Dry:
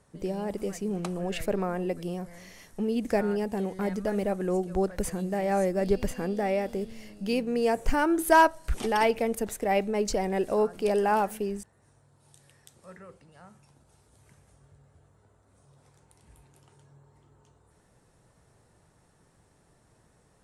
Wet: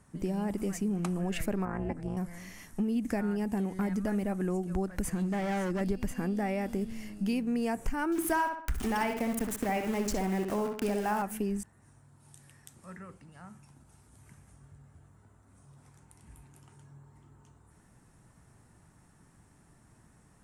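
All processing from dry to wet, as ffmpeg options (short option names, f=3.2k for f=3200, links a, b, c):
-filter_complex "[0:a]asettb=1/sr,asplit=3[a][b][c];[a]atrim=end=1.654[d];[b]atrim=start=1.65:end=2.17,asetpts=PTS-STARTPTS,afade=t=in:d=0.004:c=qsin,afade=t=out:st=0.516:d=0.004:c=qsin,lowpass=f=9.3k:w=0.5412,lowpass=f=9.3k:w=1.3066,highshelf=f=2.4k:t=q:w=1.5:g=-6.5,tremolo=f=300:d=0.974[e];[c]atrim=start=2.166[f];[d][e]acrossfade=d=0.004:c1=hsin:c2=qsin[g];[g][f]acrossfade=d=0.004:c1=qsin:c2=hsin,asettb=1/sr,asplit=3[h][i][j];[h]atrim=end=5.124[k];[i]atrim=start=5.12:end=5.81,asetpts=PTS-STARTPTS,afade=t=in:d=0.004:c=qsin,afade=t=out:st=0.686:d=0.004:c=qsin,lowpass=4.8k,aemphasis=mode=production:type=50kf,asoftclip=type=hard:threshold=-27dB[l];[j]atrim=start=5.806[m];[k][l]acrossfade=d=0.004:c1=hsin:c2=qsin[n];[n][m]acrossfade=d=0.004:c1=qsin:c2=hsin,asettb=1/sr,asplit=3[o][p][q];[o]atrim=end=8.124[r];[p]atrim=start=8.12:end=11.22,asetpts=PTS-STARTPTS,afade=t=in:d=0.004:c=qsin,afade=t=out:st=3.096:d=0.004:c=qsin,aeval=exprs='val(0)*gte(abs(val(0)),0.0188)':c=same,acompressor=mode=upward:threshold=-33dB:ratio=2.5:attack=3.2:release=140:knee=2.83:detection=peak,asplit=2[s][t];[t]adelay=63,lowpass=f=3.8k:p=1,volume=-6dB,asplit=2[u][v];[v]adelay=63,lowpass=f=3.8k:p=1,volume=0.33,asplit=2[w][x];[x]adelay=63,lowpass=f=3.8k:p=1,volume=0.33,asplit=2[y][z];[z]adelay=63,lowpass=f=3.8k:p=1,volume=0.33[aa];[s][u][w][y][aa]amix=inputs=5:normalize=0,atrim=end_sample=136710[ab];[q]atrim=start=11.216[ac];[r][ab]acrossfade=d=0.004:c1=hsin:c2=qsin[ad];[ad][ac]acrossfade=d=0.004:c1=qsin:c2=hsin,equalizer=f=250:t=o:w=1:g=4,equalizer=f=500:t=o:w=1:g=-10,equalizer=f=4k:t=o:w=1:g=-7,acompressor=threshold=-31dB:ratio=5,volume=3.5dB"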